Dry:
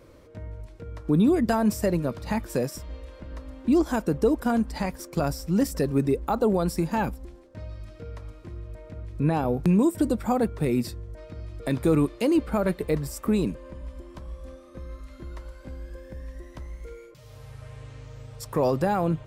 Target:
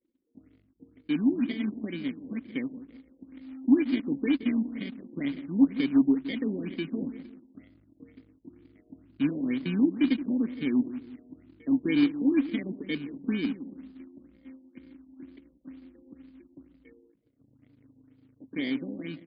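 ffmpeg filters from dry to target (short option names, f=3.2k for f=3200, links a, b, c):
-filter_complex "[0:a]bandreject=f=50:t=h:w=6,bandreject=f=100:t=h:w=6,acrusher=samples=33:mix=1:aa=0.000001,lowshelf=f=86:g=-10.5,asplit=2[a][b];[b]adelay=172,lowpass=f=840:p=1,volume=-12dB,asplit=2[c][d];[d]adelay=172,lowpass=f=840:p=1,volume=0.41,asplit=2[e][f];[f]adelay=172,lowpass=f=840:p=1,volume=0.41,asplit=2[g][h];[h]adelay=172,lowpass=f=840:p=1,volume=0.41[i];[a][c][e][g][i]amix=inputs=5:normalize=0,anlmdn=0.1,asplit=3[j][k][l];[j]bandpass=f=270:t=q:w=8,volume=0dB[m];[k]bandpass=f=2.29k:t=q:w=8,volume=-6dB[n];[l]bandpass=f=3.01k:t=q:w=8,volume=-9dB[o];[m][n][o]amix=inputs=3:normalize=0,adynamicequalizer=threshold=0.00224:dfrequency=1100:dqfactor=1.2:tfrequency=1100:tqfactor=1.2:attack=5:release=100:ratio=0.375:range=3:mode=cutabove:tftype=bell,dynaudnorm=f=420:g=11:m=4dB,acrusher=bits=4:mode=log:mix=0:aa=0.000001,afftfilt=real='re*lt(b*sr/1024,940*pow(5100/940,0.5+0.5*sin(2*PI*2.1*pts/sr)))':imag='im*lt(b*sr/1024,940*pow(5100/940,0.5+0.5*sin(2*PI*2.1*pts/sr)))':win_size=1024:overlap=0.75,volume=3.5dB"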